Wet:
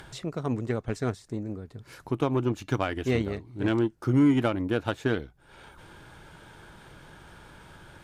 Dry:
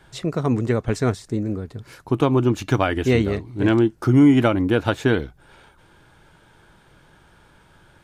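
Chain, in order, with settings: upward compressor, threshold -25 dBFS; Chebyshev shaper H 7 -28 dB, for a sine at -4.5 dBFS; trim -7.5 dB

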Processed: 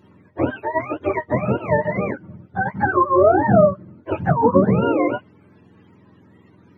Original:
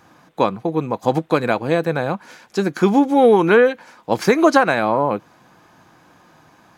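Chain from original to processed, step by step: spectrum inverted on a logarithmic axis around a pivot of 550 Hz; harmonic-percussive split harmonic +3 dB; trim -1.5 dB

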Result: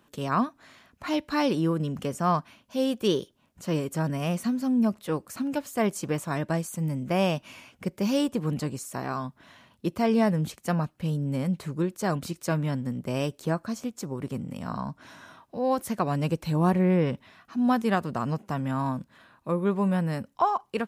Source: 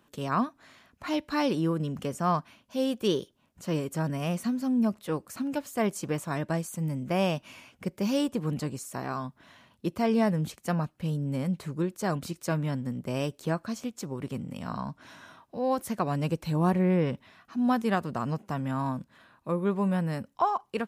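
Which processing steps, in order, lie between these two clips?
13.43–15.65 s: dynamic bell 3 kHz, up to -4 dB, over -54 dBFS, Q 1.1; trim +2 dB

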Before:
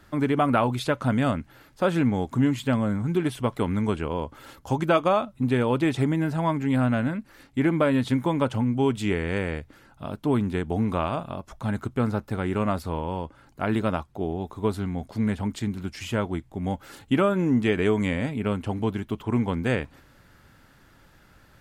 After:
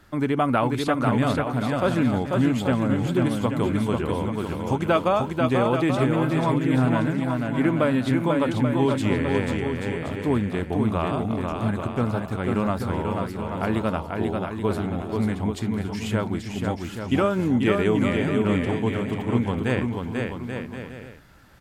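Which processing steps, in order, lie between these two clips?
bouncing-ball echo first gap 490 ms, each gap 0.7×, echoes 5

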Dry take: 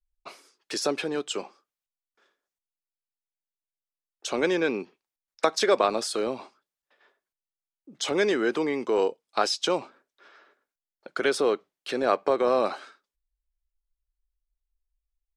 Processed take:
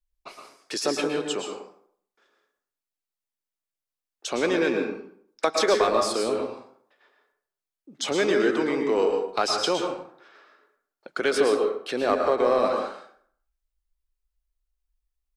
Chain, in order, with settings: in parallel at -3.5 dB: overload inside the chain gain 17 dB; on the sum: plate-style reverb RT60 0.59 s, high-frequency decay 0.65×, pre-delay 100 ms, DRR 3 dB; trim -4 dB

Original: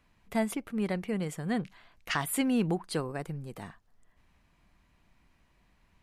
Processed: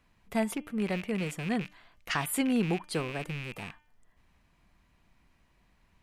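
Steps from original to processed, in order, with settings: rattle on loud lows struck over -45 dBFS, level -29 dBFS; de-hum 299.8 Hz, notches 11

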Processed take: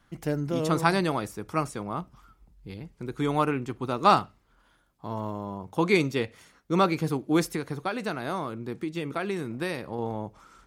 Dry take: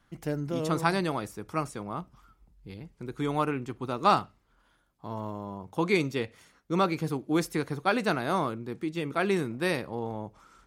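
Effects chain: 7.49–9.99 s: compression 4:1, threshold -31 dBFS, peak gain reduction 9.5 dB; trim +3 dB

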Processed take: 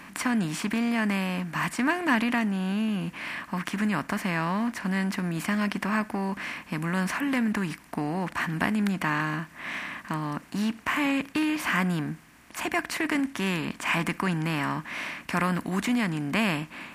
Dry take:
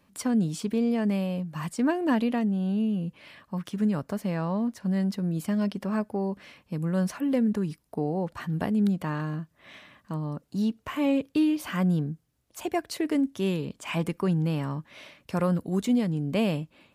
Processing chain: spectral levelling over time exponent 0.6; ten-band graphic EQ 125 Hz -7 dB, 500 Hz -12 dB, 1 kHz +4 dB, 2 kHz +9 dB, 4 kHz -3 dB

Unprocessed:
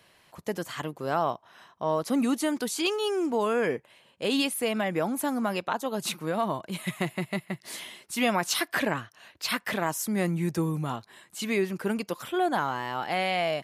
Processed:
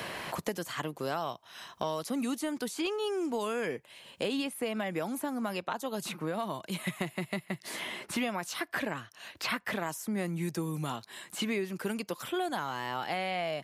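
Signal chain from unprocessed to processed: three bands compressed up and down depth 100%; trim -6.5 dB

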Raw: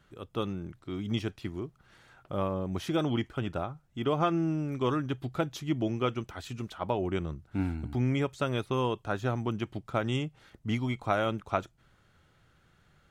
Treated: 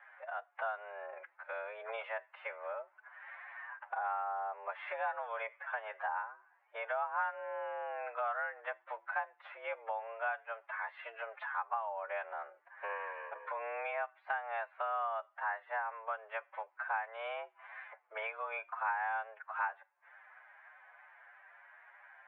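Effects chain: time stretch by phase-locked vocoder 1.7×; mistuned SSB +220 Hz 510–2000 Hz; compression 3:1, threshold -52 dBFS, peak gain reduction 20.5 dB; trim +12.5 dB

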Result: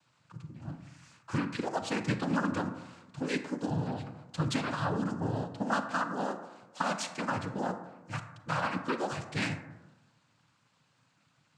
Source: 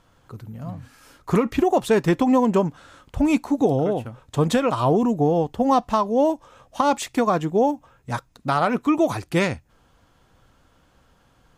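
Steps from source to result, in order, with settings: peaking EQ 440 Hz -14 dB 1.7 oct; noise-vocoded speech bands 8; reverberation RT60 1.1 s, pre-delay 28 ms, DRR 8.5 dB; trim -5.5 dB

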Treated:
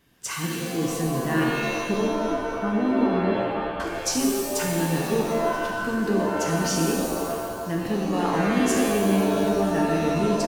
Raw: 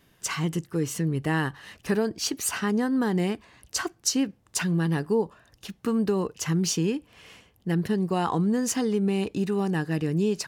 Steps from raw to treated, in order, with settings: 1.44–3.80 s: steep low-pass 1.3 kHz 96 dB/octave; frequency-shifting echo 492 ms, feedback 64%, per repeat -140 Hz, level -21.5 dB; pitch-shifted reverb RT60 1.7 s, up +7 st, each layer -2 dB, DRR -0.5 dB; trim -3 dB

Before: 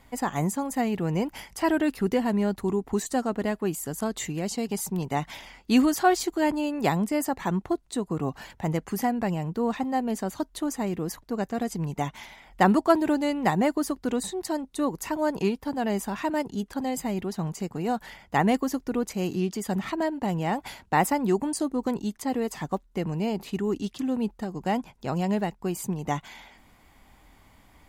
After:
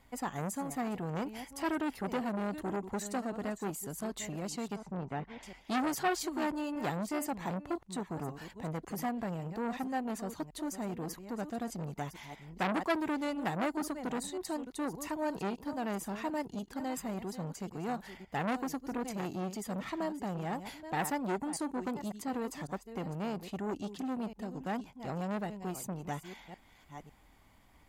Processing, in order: chunks repeated in reverse 553 ms, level -12.5 dB; 4.76–5.43 s: low-pass 2 kHz 12 dB/octave; transformer saturation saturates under 1.9 kHz; trim -7 dB

